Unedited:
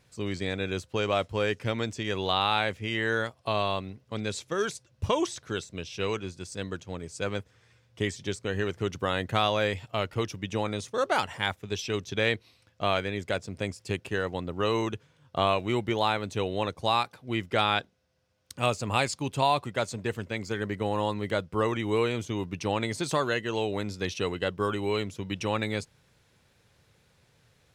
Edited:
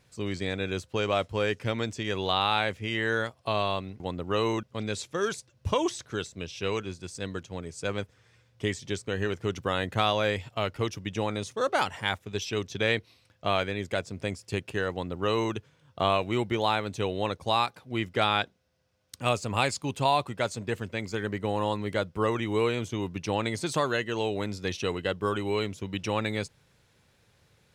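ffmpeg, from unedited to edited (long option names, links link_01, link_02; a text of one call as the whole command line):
ffmpeg -i in.wav -filter_complex "[0:a]asplit=3[link_01][link_02][link_03];[link_01]atrim=end=4.002[link_04];[link_02]atrim=start=14.288:end=14.922[link_05];[link_03]atrim=start=3.998[link_06];[link_04][link_05]acrossfade=duration=0.004:curve1=hsin:curve2=hsin[link_07];[link_07][link_06]acrossfade=duration=0.004:curve1=hsin:curve2=hsin" out.wav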